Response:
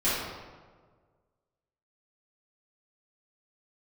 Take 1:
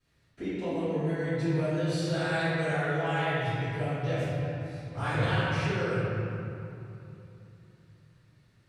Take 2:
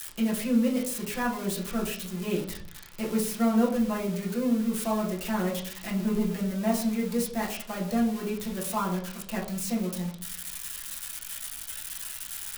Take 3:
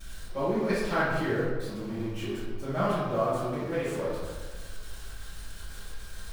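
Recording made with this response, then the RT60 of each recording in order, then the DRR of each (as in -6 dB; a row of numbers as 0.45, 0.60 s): 3; 2.9, 0.55, 1.6 s; -18.5, -5.0, -13.5 dB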